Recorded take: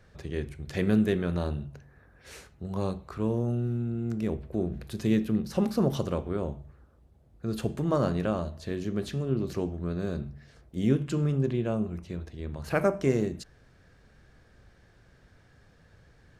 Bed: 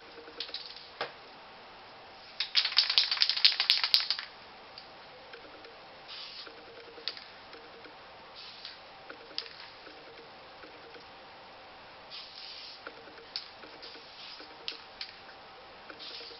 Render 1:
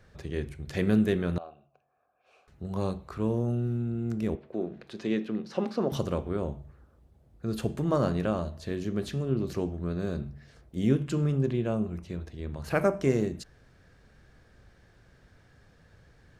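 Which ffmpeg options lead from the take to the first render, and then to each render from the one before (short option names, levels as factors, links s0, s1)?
-filter_complex "[0:a]asettb=1/sr,asplit=3[s0][s1][s2];[s0]atrim=end=1.384[s3];[s1]atrim=start=1.38:end=2.48,asetpts=PTS-STARTPTS,afade=t=in:d=0.004:c=qsin,afade=t=out:st=1.096:d=0.004:c=qsin,asplit=3[s4][s5][s6];[s4]bandpass=f=730:t=q:w=8,volume=1[s7];[s5]bandpass=f=1090:t=q:w=8,volume=0.501[s8];[s6]bandpass=f=2440:t=q:w=8,volume=0.355[s9];[s7][s8][s9]amix=inputs=3:normalize=0[s10];[s2]atrim=start=2.476[s11];[s3][s10]acrossfade=d=0.004:c1=hsin:c2=qsin[s12];[s12][s11]acrossfade=d=0.004:c1=qsin:c2=hsin,asettb=1/sr,asplit=3[s13][s14][s15];[s13]atrim=end=4.354[s16];[s14]atrim=start=4.35:end=5.92,asetpts=PTS-STARTPTS,afade=t=in:d=0.004:c=qsin,afade=t=out:st=1.566:d=0.004:c=qsin,highpass=270,lowpass=4400[s17];[s15]atrim=start=5.916[s18];[s16][s17]acrossfade=d=0.004:c1=hsin:c2=qsin[s19];[s19][s18]acrossfade=d=0.004:c1=qsin:c2=hsin"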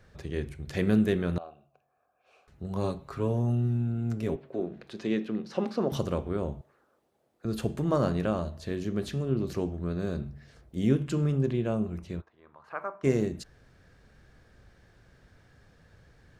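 -filter_complex "[0:a]asettb=1/sr,asplit=3[s0][s1][s2];[s0]atrim=end=2.834[s3];[s1]atrim=start=2.83:end=4.6,asetpts=PTS-STARTPTS,afade=t=in:d=0.004:c=qsin,afade=t=out:st=1.766:d=0.004:c=qsin,aecho=1:1:7.3:0.55,atrim=end_sample=78057[s4];[s2]atrim=start=4.596[s5];[s3][s4]acrossfade=d=0.004:c1=hsin:c2=qsin[s6];[s6][s5]acrossfade=d=0.004:c1=qsin:c2=hsin,asettb=1/sr,asplit=3[s7][s8][s9];[s7]atrim=end=6.614[s10];[s8]atrim=start=6.61:end=7.45,asetpts=PTS-STARTPTS,afade=t=in:d=0.004:c=qsin,afade=t=out:st=0.836:d=0.004:c=qsin,highpass=400[s11];[s9]atrim=start=7.446[s12];[s10][s11]acrossfade=d=0.004:c1=hsin:c2=qsin[s13];[s13][s12]acrossfade=d=0.004:c1=qsin:c2=hsin,asplit=3[s14][s15][s16];[s14]afade=t=out:st=12.2:d=0.02[s17];[s15]bandpass=f=1100:t=q:w=3.1,afade=t=in:st=12.2:d=0.02,afade=t=out:st=13.03:d=0.02[s18];[s16]afade=t=in:st=13.03:d=0.02[s19];[s17][s18][s19]amix=inputs=3:normalize=0"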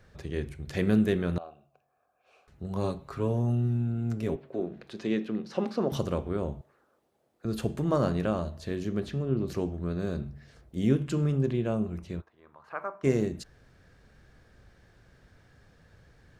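-filter_complex "[0:a]asettb=1/sr,asplit=3[s0][s1][s2];[s0]atrim=end=9.004[s3];[s1]atrim=start=9:end=9.48,asetpts=PTS-STARTPTS,afade=t=in:d=0.004:c=qsin,afade=t=out:st=0.476:d=0.004:c=qsin,highshelf=f=5000:g=-12[s4];[s2]atrim=start=9.476[s5];[s3][s4]acrossfade=d=0.004:c1=hsin:c2=qsin[s6];[s6][s5]acrossfade=d=0.004:c1=qsin:c2=hsin"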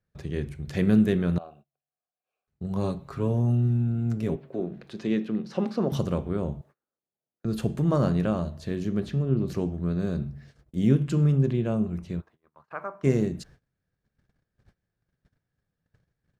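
-af "agate=range=0.0501:threshold=0.00224:ratio=16:detection=peak,equalizer=f=160:t=o:w=1.1:g=6.5"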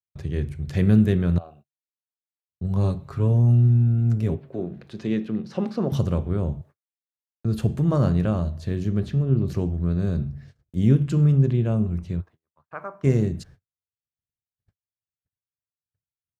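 -af "agate=range=0.0224:threshold=0.00447:ratio=3:detection=peak,equalizer=f=94:t=o:w=0.9:g=11.5"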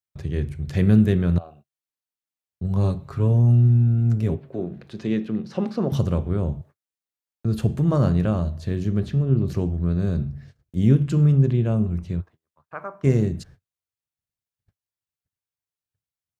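-af "volume=1.12"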